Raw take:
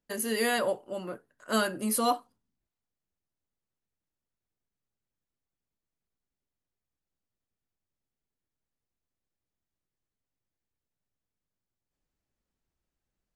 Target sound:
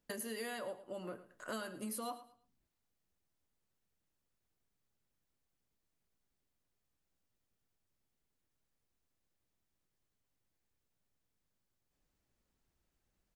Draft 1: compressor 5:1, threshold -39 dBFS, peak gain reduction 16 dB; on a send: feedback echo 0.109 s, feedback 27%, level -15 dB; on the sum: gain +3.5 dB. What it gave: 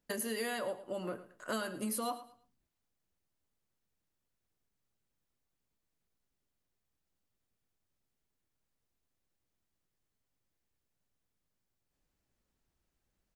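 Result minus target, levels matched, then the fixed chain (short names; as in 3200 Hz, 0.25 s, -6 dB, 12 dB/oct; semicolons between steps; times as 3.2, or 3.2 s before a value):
compressor: peak gain reduction -5.5 dB
compressor 5:1, threshold -46 dBFS, peak gain reduction 21.5 dB; on a send: feedback echo 0.109 s, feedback 27%, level -15 dB; on the sum: gain +3.5 dB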